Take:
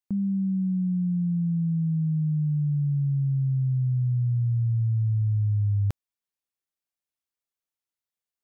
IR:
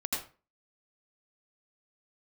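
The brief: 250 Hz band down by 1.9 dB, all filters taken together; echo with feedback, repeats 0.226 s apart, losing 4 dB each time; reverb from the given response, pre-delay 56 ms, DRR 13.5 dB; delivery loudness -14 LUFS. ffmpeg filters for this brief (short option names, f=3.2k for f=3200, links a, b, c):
-filter_complex "[0:a]equalizer=f=250:t=o:g=-4,aecho=1:1:226|452|678|904|1130|1356|1582|1808|2034:0.631|0.398|0.25|0.158|0.0994|0.0626|0.0394|0.0249|0.0157,asplit=2[a][b];[1:a]atrim=start_sample=2205,adelay=56[c];[b][c]afir=irnorm=-1:irlink=0,volume=-18.5dB[d];[a][d]amix=inputs=2:normalize=0,volume=11dB"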